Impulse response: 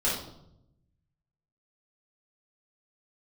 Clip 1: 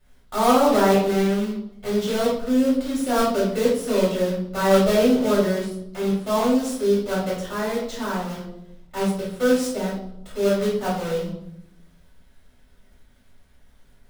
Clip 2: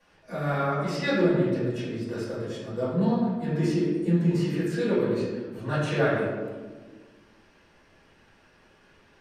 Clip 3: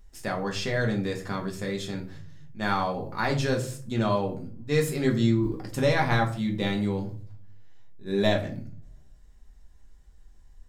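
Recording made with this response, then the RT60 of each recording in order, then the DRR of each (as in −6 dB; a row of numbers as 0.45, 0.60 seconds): 1; 0.80, 1.4, 0.45 seconds; −8.5, −13.5, 0.5 decibels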